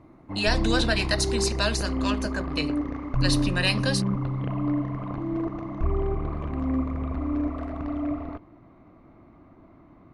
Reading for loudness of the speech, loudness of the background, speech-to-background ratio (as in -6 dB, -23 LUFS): -27.5 LUFS, -29.0 LUFS, 1.5 dB